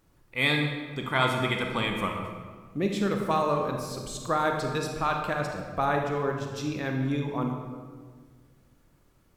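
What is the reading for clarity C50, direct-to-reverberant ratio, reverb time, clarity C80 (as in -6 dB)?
3.5 dB, 2.0 dB, 1.6 s, 5.5 dB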